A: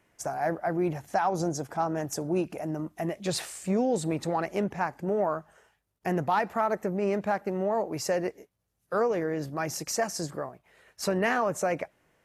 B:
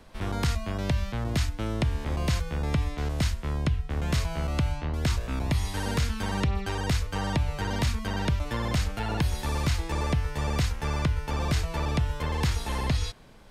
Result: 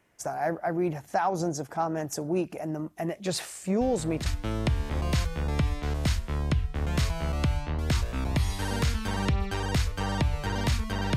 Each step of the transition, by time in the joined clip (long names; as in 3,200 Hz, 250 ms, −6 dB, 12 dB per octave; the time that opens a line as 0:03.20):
A
0:03.81: mix in B from 0:00.96 0.45 s −9.5 dB
0:04.26: continue with B from 0:01.41